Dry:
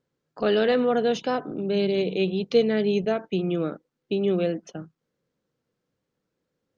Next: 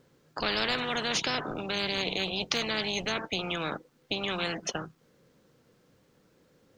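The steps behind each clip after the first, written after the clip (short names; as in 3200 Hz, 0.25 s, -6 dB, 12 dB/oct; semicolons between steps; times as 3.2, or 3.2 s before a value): spectral compressor 4:1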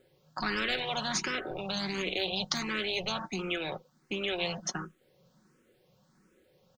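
comb 5.4 ms, depth 46%; endless phaser +1.4 Hz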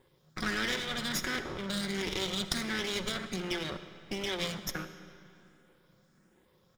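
minimum comb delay 0.56 ms; reverb RT60 2.8 s, pre-delay 20 ms, DRR 11 dB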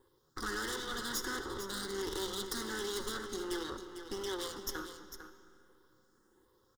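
wavefolder -26 dBFS; fixed phaser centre 640 Hz, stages 6; echo 0.45 s -10 dB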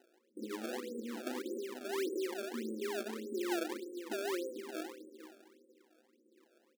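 notch 430 Hz, Q 12; FFT band-pass 210–560 Hz; decimation with a swept rate 25×, swing 160% 1.7 Hz; gain +4 dB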